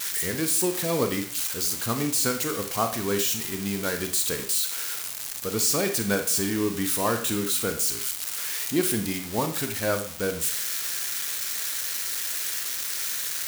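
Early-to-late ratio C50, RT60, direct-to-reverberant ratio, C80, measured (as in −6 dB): 9.0 dB, 0.45 s, 6.0 dB, 13.5 dB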